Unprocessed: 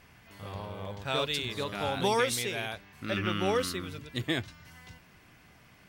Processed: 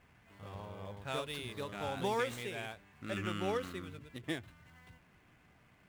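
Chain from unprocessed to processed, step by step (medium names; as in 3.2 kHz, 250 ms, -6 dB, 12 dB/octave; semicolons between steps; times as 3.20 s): median filter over 9 samples; endings held to a fixed fall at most 190 dB/s; trim -6.5 dB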